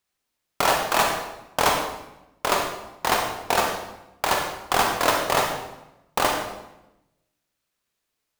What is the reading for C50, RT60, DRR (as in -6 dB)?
3.5 dB, 0.95 s, 1.5 dB